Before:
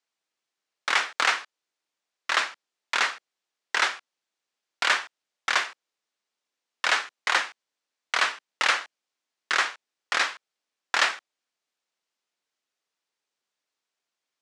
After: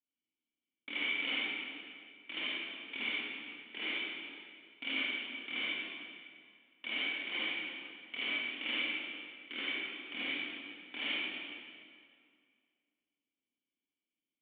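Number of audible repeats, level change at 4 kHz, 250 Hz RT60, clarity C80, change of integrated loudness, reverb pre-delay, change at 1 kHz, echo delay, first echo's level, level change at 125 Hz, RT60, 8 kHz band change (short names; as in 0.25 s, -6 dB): none, -7.0 dB, 2.2 s, -3.5 dB, -11.0 dB, 38 ms, -22.5 dB, none, none, n/a, 2.1 s, under -40 dB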